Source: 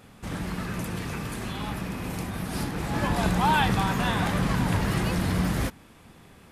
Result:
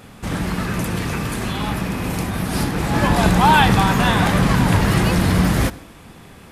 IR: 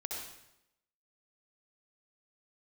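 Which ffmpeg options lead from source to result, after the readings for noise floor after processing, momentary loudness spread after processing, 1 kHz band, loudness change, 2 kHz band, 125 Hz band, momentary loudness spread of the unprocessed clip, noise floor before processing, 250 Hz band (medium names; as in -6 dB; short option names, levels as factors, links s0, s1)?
-43 dBFS, 11 LU, +9.5 dB, +9.0 dB, +9.0 dB, +9.0 dB, 10 LU, -52 dBFS, +9.0 dB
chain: -filter_complex "[0:a]asplit=2[s0][s1];[1:a]atrim=start_sample=2205[s2];[s1][s2]afir=irnorm=-1:irlink=0,volume=0.126[s3];[s0][s3]amix=inputs=2:normalize=0,volume=2.66"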